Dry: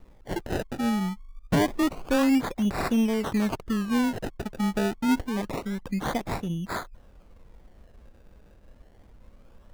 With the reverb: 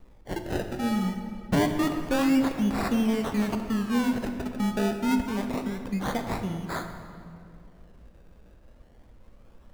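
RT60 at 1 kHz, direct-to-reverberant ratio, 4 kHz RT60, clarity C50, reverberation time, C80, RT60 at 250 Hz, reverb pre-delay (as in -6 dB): 2.1 s, 5.5 dB, 1.5 s, 7.0 dB, 2.3 s, 7.5 dB, 2.9 s, 6 ms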